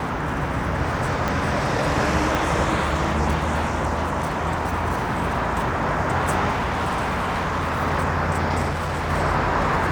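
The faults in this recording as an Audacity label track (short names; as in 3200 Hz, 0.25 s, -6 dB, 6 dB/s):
1.280000	1.280000	pop -10 dBFS
2.350000	2.350000	pop
6.510000	7.810000	clipped -20 dBFS
8.690000	9.110000	clipped -22 dBFS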